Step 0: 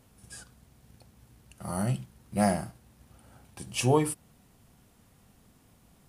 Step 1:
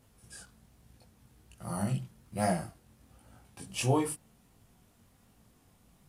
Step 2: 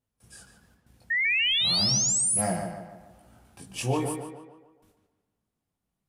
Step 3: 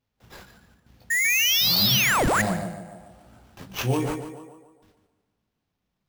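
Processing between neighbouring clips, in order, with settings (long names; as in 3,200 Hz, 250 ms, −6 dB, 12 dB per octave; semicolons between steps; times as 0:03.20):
multi-voice chorus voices 2, 1.2 Hz, delay 20 ms, depth 3 ms
noise gate with hold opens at −51 dBFS; sound drawn into the spectrogram rise, 0:01.10–0:02.42, 1,800–11,000 Hz −25 dBFS; tape delay 145 ms, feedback 50%, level −5 dB, low-pass 3,100 Hz
dynamic equaliser 800 Hz, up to −5 dB, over −44 dBFS, Q 0.92; sample-rate reduction 8,900 Hz, jitter 0%; level +4 dB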